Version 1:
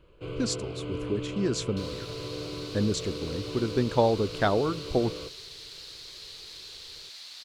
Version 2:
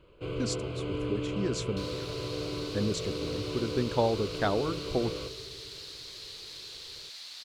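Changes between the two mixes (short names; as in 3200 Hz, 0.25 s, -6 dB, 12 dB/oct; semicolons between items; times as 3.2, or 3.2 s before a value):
speech -4.0 dB; first sound: send +11.0 dB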